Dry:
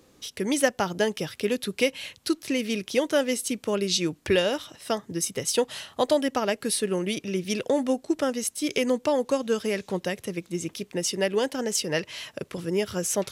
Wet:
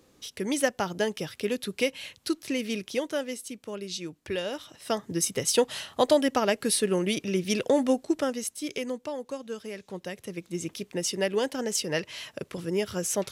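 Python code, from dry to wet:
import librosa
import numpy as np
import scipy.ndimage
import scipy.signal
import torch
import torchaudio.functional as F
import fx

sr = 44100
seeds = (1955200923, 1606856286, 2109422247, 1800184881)

y = fx.gain(x, sr, db=fx.line((2.76, -3.0), (3.5, -10.5), (4.27, -10.5), (5.08, 1.0), (7.94, 1.0), (9.13, -11.0), (9.79, -11.0), (10.61, -2.0)))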